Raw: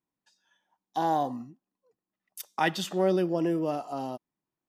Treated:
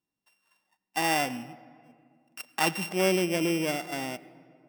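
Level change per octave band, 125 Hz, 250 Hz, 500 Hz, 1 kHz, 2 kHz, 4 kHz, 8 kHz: 0.0, −0.5, −1.0, −2.0, +6.0, +6.0, +9.5 decibels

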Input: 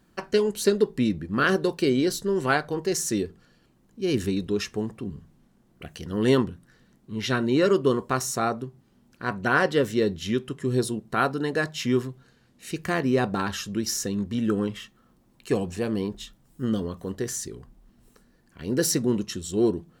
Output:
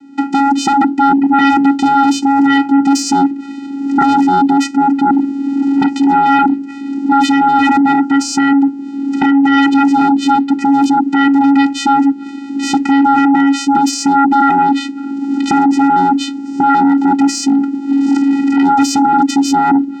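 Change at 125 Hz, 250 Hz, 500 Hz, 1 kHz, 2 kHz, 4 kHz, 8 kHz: −1.5, +17.5, −4.5, +22.5, +9.5, +10.0, +8.0 decibels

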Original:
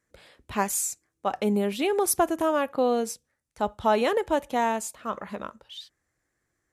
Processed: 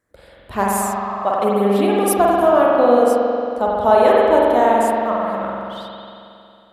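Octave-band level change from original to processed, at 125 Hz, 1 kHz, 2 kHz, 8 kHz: can't be measured, +11.5 dB, +7.5 dB, +1.0 dB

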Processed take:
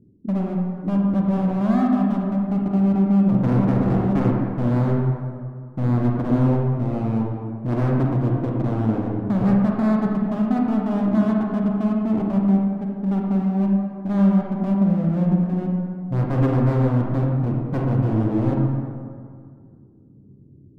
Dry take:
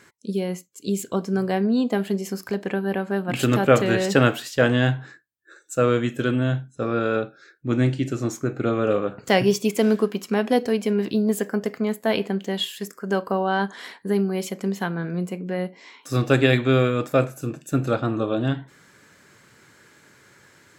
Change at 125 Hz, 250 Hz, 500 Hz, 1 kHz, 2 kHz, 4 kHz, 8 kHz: +6.0 dB, +5.5 dB, −5.5 dB, −1.5 dB, −12.0 dB, below −15 dB, below −20 dB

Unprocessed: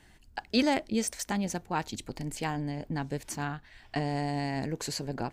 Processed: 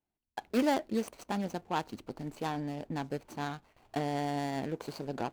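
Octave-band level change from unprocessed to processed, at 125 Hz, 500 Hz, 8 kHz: −5.5, −0.5, −12.5 decibels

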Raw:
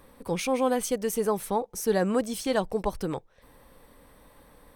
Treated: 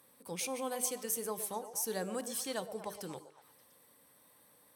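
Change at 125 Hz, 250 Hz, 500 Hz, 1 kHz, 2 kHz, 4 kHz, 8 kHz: −14.5, −14.5, −13.0, −11.5, −10.0, −6.0, −0.5 decibels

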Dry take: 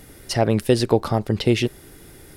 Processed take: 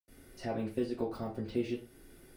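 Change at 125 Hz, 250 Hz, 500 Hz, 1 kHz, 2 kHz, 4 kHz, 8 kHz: −21.0 dB, −13.5 dB, −15.5 dB, −17.0 dB, −18.5 dB, −23.5 dB, below −20 dB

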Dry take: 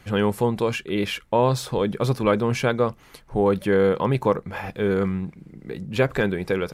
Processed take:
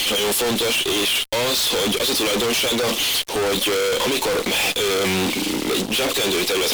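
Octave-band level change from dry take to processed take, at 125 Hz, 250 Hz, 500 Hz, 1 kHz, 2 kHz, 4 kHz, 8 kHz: −8.5, −0.5, +0.5, +0.5, +7.0, +18.0, +19.5 decibels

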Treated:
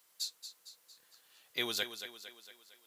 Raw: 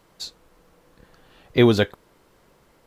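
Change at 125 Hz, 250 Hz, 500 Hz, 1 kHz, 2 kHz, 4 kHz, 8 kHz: −35.0 dB, −27.0 dB, −24.0 dB, −16.5 dB, −11.0 dB, −5.5 dB, can't be measured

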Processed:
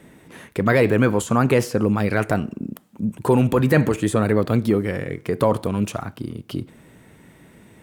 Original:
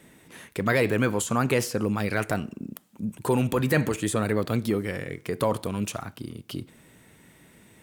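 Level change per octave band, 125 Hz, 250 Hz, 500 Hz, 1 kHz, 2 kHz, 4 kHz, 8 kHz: +7.0, +7.0, +6.5, +5.5, +3.5, +0.5, −1.0 decibels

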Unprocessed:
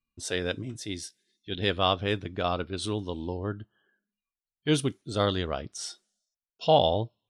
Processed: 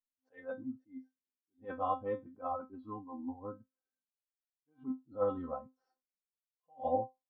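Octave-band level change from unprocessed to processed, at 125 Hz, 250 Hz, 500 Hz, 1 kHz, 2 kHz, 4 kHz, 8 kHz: −21.0 dB, −10.5 dB, −10.0 dB, −8.0 dB, −19.5 dB, below −35 dB, below −40 dB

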